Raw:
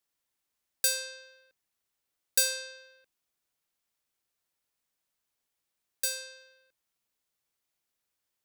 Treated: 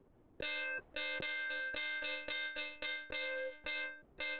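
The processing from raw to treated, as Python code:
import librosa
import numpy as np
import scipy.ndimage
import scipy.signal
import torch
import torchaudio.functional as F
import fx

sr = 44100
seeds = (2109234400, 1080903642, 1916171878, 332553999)

y = fx.spec_clip(x, sr, under_db=12)
y = fx.stretch_vocoder_free(y, sr, factor=0.52)
y = 10.0 ** (-24.0 / 20.0) * np.tanh(y / 10.0 ** (-24.0 / 20.0))
y = fx.env_lowpass(y, sr, base_hz=370.0, full_db=-32.0)
y = fx.echo_feedback(y, sr, ms=535, feedback_pct=49, wet_db=-19)
y = fx.lpc_monotone(y, sr, seeds[0], pitch_hz=300.0, order=16)
y = fx.env_flatten(y, sr, amount_pct=100)
y = y * 10.0 ** (-1.0 / 20.0)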